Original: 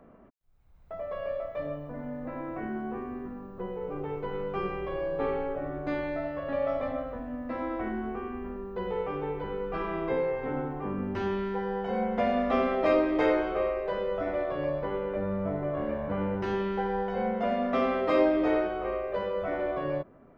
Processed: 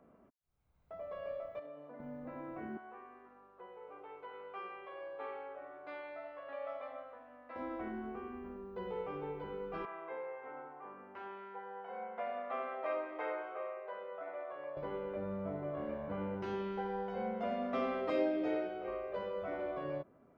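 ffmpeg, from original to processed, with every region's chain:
ffmpeg -i in.wav -filter_complex "[0:a]asettb=1/sr,asplit=3[link_01][link_02][link_03];[link_01]atrim=end=1.594[link_04];[link_02]atrim=start=1.59:end=2,asetpts=PTS-STARTPTS,afade=type=in:duration=0.004:curve=qsin,afade=type=out:start_time=0.406:duration=0.004:curve=qsin,highpass=320,lowpass=4100,acompressor=threshold=-37dB:ratio=4:attack=3.2:release=140:knee=1:detection=peak[link_05];[link_03]atrim=start=1.996[link_06];[link_04][link_05]acrossfade=duration=0.004:curve1=hsin:curve2=qsin[link_07];[link_07][link_06]acrossfade=duration=0.004:curve1=qsin:curve2=hsin,asettb=1/sr,asplit=3[link_08][link_09][link_10];[link_08]atrim=end=2.774[link_11];[link_09]atrim=start=2.77:end=7.56,asetpts=PTS-STARTPTS,afade=type=in:duration=0.004:curve=qsin,afade=type=out:start_time=4.786:duration=0.004:curve=qsin,highpass=710,lowpass=3500,aeval=exprs='val(0)+0.000355*(sin(2*PI*50*n/s)+sin(2*PI*2*50*n/s)/2+sin(2*PI*3*50*n/s)/3+sin(2*PI*4*50*n/s)/4+sin(2*PI*5*50*n/s)/5)':channel_layout=same[link_12];[link_10]atrim=start=7.556[link_13];[link_11][link_12]acrossfade=duration=0.004:curve1=hsin:curve2=qsin[link_14];[link_14][link_13]acrossfade=duration=0.004:curve1=qsin:curve2=hsin,asettb=1/sr,asplit=3[link_15][link_16][link_17];[link_15]atrim=end=9.854[link_18];[link_16]atrim=start=9.85:end=14.77,asetpts=PTS-STARTPTS,afade=type=in:duration=0.004:curve=qsin,afade=type=out:start_time=4.916:duration=0.004:curve=qsin,highpass=frequency=280:poles=1,acrossover=split=540 2500:gain=0.158 1 0.0891[link_19][link_20][link_21];[link_19][link_20][link_21]amix=inputs=3:normalize=0[link_22];[link_17]atrim=start=14.766[link_23];[link_18][link_22]acrossfade=duration=0.004:curve1=hsin:curve2=qsin[link_24];[link_24][link_23]acrossfade=duration=0.004:curve1=qsin:curve2=hsin,asettb=1/sr,asplit=3[link_25][link_26][link_27];[link_25]atrim=end=18.104[link_28];[link_26]atrim=start=18.1:end=18.88,asetpts=PTS-STARTPTS,afade=type=in:duration=0.004:curve=qsin,afade=type=out:start_time=0.776:duration=0.004:curve=qsin,highpass=89,equalizer=frequency=1100:width_type=o:width=0.41:gain=-12.5,bandreject=frequency=2000:width=25[link_29];[link_27]atrim=start=18.876[link_30];[link_28][link_29]acrossfade=duration=0.004:curve1=hsin:curve2=qsin[link_31];[link_31][link_30]acrossfade=duration=0.004:curve1=qsin:curve2=hsin,highpass=frequency=87:poles=1,bandreject=frequency=1800:width=18,volume=-8.5dB" out.wav

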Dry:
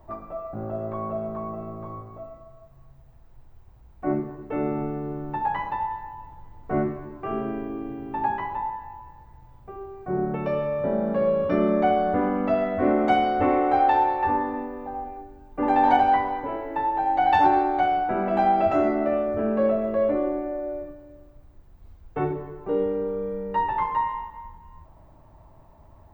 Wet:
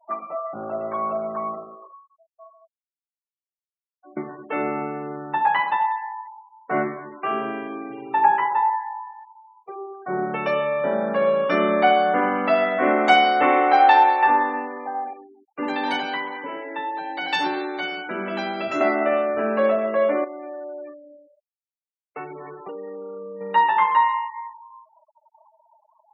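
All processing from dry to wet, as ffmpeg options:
ffmpeg -i in.wav -filter_complex "[0:a]asettb=1/sr,asplit=3[link_01][link_02][link_03];[link_01]atrim=end=1.484[link_04];[link_02]atrim=start=1.48:end=4.17,asetpts=PTS-STARTPTS,afade=type=in:duration=0.004:curve=qsin,afade=type=out:start_time=2.686:duration=0.004:curve=qsin,asplit=2[link_05][link_06];[link_06]adelay=89,lowpass=frequency=3400:poles=1,volume=-7.5dB,asplit=2[link_07][link_08];[link_08]adelay=89,lowpass=frequency=3400:poles=1,volume=0.42,asplit=2[link_09][link_10];[link_10]adelay=89,lowpass=frequency=3400:poles=1,volume=0.42,asplit=2[link_11][link_12];[link_12]adelay=89,lowpass=frequency=3400:poles=1,volume=0.42,asplit=2[link_13][link_14];[link_14]adelay=89,lowpass=frequency=3400:poles=1,volume=0.42[link_15];[link_05][link_07][link_09][link_11][link_13][link_15]amix=inputs=6:normalize=0,atrim=end_sample=118629,aeval=exprs='val(0)*pow(10,-27*if(lt(mod(1.1*n/s,1),2*abs(1.1)/1000),1-mod(1.1*n/s,1)/(2*abs(1.1)/1000),(mod(1.1*n/s,1)-2*abs(1.1)/1000)/(1-2*abs(1.1)/1000))/20)':channel_layout=same[link_16];[link_03]atrim=start=4.166[link_17];[link_04][link_16]acrossfade=duration=0.004:curve1=hsin:curve2=qsin[link_18];[link_18][link_17]acrossfade=duration=0.004:curve1=qsin:curve2=hsin,asettb=1/sr,asplit=3[link_19][link_20][link_21];[link_19]atrim=end=7.924[link_22];[link_20]atrim=start=7.92:end=9.93,asetpts=PTS-STARTPTS,afade=type=in:duration=0.004:curve=qsin,afade=type=out:start_time=2.006:duration=0.004:curve=qsin,lowpass=frequency=4000:poles=1,lowshelf=frequency=92:gain=7,aecho=1:1:2.2:0.5,atrim=end_sample=88641[link_23];[link_21]atrim=start=9.926[link_24];[link_22][link_23]acrossfade=duration=0.004:curve1=hsin:curve2=qsin[link_25];[link_25][link_24]acrossfade=duration=0.004:curve1=qsin:curve2=hsin,asettb=1/sr,asplit=3[link_26][link_27][link_28];[link_26]atrim=end=15.134[link_29];[link_27]atrim=start=15.13:end=18.81,asetpts=PTS-STARTPTS,afade=type=in:duration=0.004:curve=qsin,afade=type=out:start_time=3.676:duration=0.004:curve=qsin,equalizer=frequency=750:width=6.7:gain=-15,acrossover=split=450|3000[link_30][link_31][link_32];[link_31]acompressor=threshold=-50dB:ratio=1.5:attack=3.2:release=140:knee=2.83:detection=peak[link_33];[link_30][link_33][link_32]amix=inputs=3:normalize=0,asplit=2[link_34][link_35];[link_35]adelay=141,lowpass=frequency=3200:poles=1,volume=-18dB,asplit=2[link_36][link_37];[link_37]adelay=141,lowpass=frequency=3200:poles=1,volume=0.51,asplit=2[link_38][link_39];[link_39]adelay=141,lowpass=frequency=3200:poles=1,volume=0.51,asplit=2[link_40][link_41];[link_41]adelay=141,lowpass=frequency=3200:poles=1,volume=0.51[link_42];[link_34][link_36][link_38][link_40][link_42]amix=inputs=5:normalize=0,atrim=end_sample=162288[link_43];[link_28]atrim=start=18.806[link_44];[link_29][link_43]acrossfade=duration=0.004:curve1=hsin:curve2=qsin[link_45];[link_45][link_44]acrossfade=duration=0.004:curve1=qsin:curve2=hsin,asettb=1/sr,asplit=3[link_46][link_47][link_48];[link_46]atrim=end=20.244[link_49];[link_47]atrim=start=20.24:end=23.41,asetpts=PTS-STARTPTS,afade=type=in:duration=0.004:curve=qsin,afade=type=out:start_time=3.166:duration=0.004:curve=qsin,highpass=58,bandreject=frequency=1600:width=12,acompressor=threshold=-33dB:ratio=6:attack=3.2:release=140:knee=1:detection=peak[link_50];[link_48]atrim=start=23.406[link_51];[link_49][link_50]acrossfade=duration=0.004:curve1=hsin:curve2=qsin[link_52];[link_52][link_51]acrossfade=duration=0.004:curve1=qsin:curve2=hsin,highpass=frequency=150:width=0.5412,highpass=frequency=150:width=1.3066,tiltshelf=frequency=790:gain=-9.5,afftfilt=real='re*gte(hypot(re,im),0.00794)':imag='im*gte(hypot(re,im),0.00794)':win_size=1024:overlap=0.75,volume=5.5dB" out.wav

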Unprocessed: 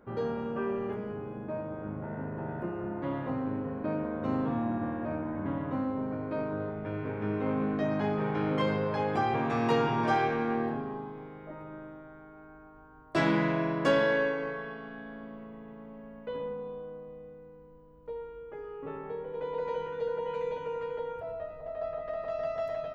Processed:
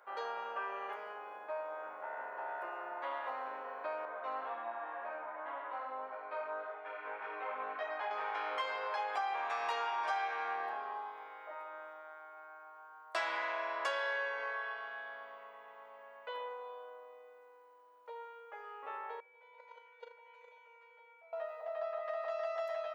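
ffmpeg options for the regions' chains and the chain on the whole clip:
ffmpeg -i in.wav -filter_complex "[0:a]asettb=1/sr,asplit=3[link_01][link_02][link_03];[link_01]atrim=end=4.054[link_04];[link_02]atrim=start=4.05:end=8.11,asetpts=PTS-STARTPTS,afade=type=in:duration=0.004:curve=qsin,afade=type=out:start_time=4.056:duration=0.004:curve=qsin,lowpass=3400,flanger=delay=16.5:depth=2.8:speed=1.8[link_05];[link_03]atrim=start=8.106[link_06];[link_04][link_05]acrossfade=duration=0.004:curve1=hsin:curve2=qsin[link_07];[link_07][link_06]acrossfade=duration=0.004:curve1=qsin:curve2=hsin,asettb=1/sr,asplit=3[link_08][link_09][link_10];[link_08]atrim=end=19.204[link_11];[link_09]atrim=start=19.2:end=21.33,asetpts=PTS-STARTPTS,afade=type=in:duration=0.004:curve=qsin,afade=type=out:start_time=2.126:duration=0.004:curve=qsin,agate=range=-22dB:threshold=-29dB:ratio=16:release=100:detection=peak,aeval=exprs='val(0)+0.000562*sin(2*PI*2300*n/s)':channel_layout=same,asplit=2[link_12][link_13];[link_13]adelay=39,volume=-13dB[link_14];[link_12][link_14]amix=inputs=2:normalize=0,atrim=end_sample=93933[link_15];[link_10]atrim=start=21.326[link_16];[link_11][link_15]acrossfade=duration=0.004:curve1=hsin:curve2=qsin[link_17];[link_17][link_16]acrossfade=duration=0.004:curve1=qsin:curve2=hsin,highpass=frequency=710:width=0.5412,highpass=frequency=710:width=1.3066,acompressor=threshold=-39dB:ratio=3,volume=3.5dB" out.wav

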